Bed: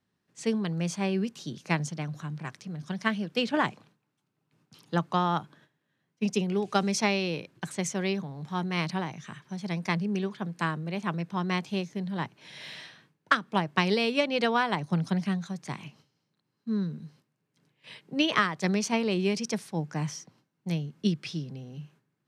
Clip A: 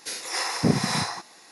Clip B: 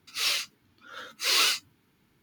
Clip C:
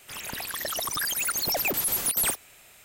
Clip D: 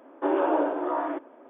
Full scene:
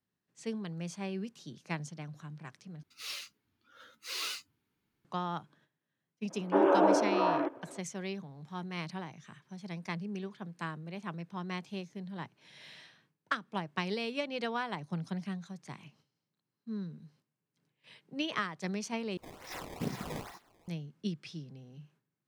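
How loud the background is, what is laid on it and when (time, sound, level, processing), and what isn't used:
bed −9.5 dB
0:02.83: overwrite with B −14 dB
0:06.30: mix in D −0.5 dB
0:19.17: overwrite with A −15 dB + sample-and-hold swept by an LFO 18×, swing 160% 2.3 Hz
not used: C

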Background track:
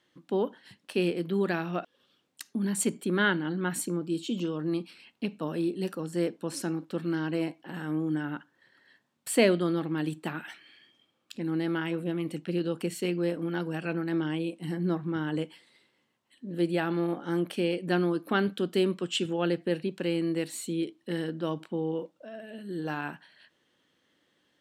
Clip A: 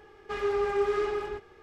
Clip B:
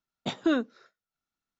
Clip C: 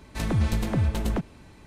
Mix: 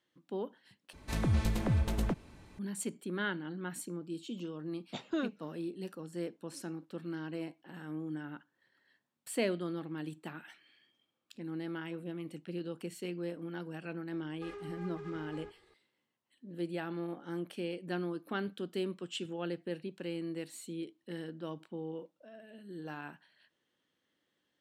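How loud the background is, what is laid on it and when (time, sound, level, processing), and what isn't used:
background track −10 dB
0:00.93: overwrite with C −5.5 dB
0:04.67: mix in B −9.5 dB
0:14.12: mix in A −13 dB + downward compressor, threshold −30 dBFS

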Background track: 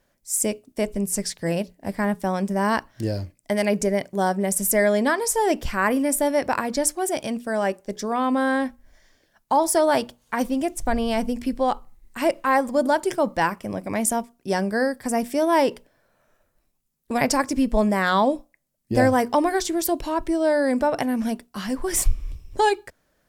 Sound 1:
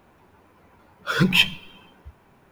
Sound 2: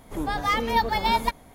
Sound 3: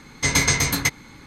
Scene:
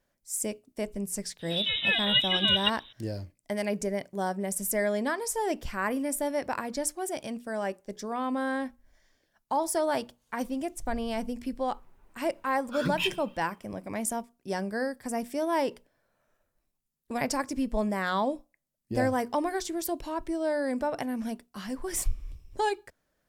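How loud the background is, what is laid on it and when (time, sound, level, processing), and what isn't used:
background track −8.5 dB
0:01.39: mix in 2 −2.5 dB + voice inversion scrambler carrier 3,800 Hz
0:11.65: mix in 1 −12.5 dB
not used: 3

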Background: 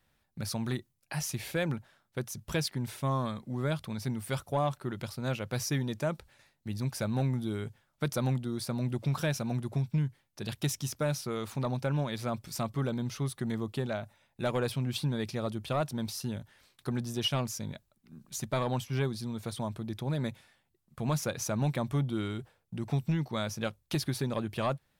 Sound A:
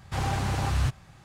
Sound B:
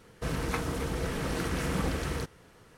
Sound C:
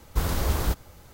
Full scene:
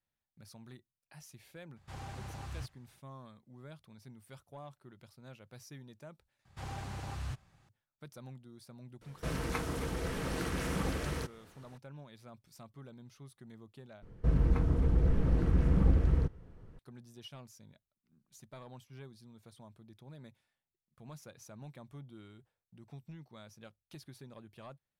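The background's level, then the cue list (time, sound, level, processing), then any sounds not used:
background −19.5 dB
0:01.76: mix in A −17 dB
0:06.45: overwrite with A −14 dB
0:09.01: mix in B −4 dB
0:14.02: overwrite with B −9 dB + spectral tilt −4.5 dB per octave
not used: C

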